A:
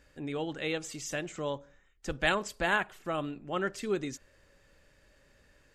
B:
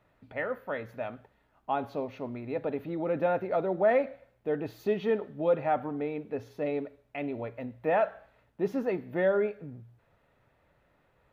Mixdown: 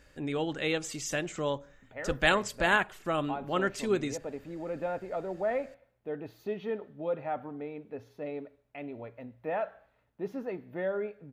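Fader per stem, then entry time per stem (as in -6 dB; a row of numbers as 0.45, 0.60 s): +3.0, -6.5 dB; 0.00, 1.60 s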